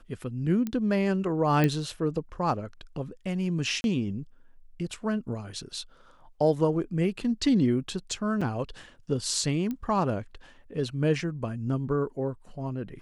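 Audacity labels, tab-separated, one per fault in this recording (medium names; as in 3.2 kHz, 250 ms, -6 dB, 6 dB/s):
0.670000	0.670000	pop -19 dBFS
1.640000	1.640000	pop -12 dBFS
3.810000	3.840000	dropout 31 ms
8.410000	8.420000	dropout 5.3 ms
9.710000	9.710000	pop -21 dBFS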